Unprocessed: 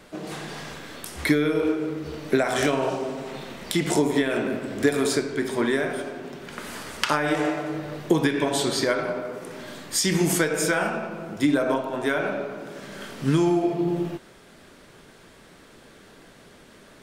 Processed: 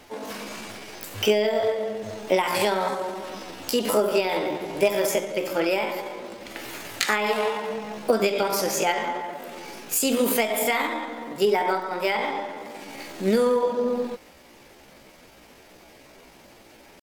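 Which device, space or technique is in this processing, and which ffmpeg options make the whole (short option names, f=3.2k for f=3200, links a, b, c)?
chipmunk voice: -af "asetrate=62367,aresample=44100,atempo=0.707107"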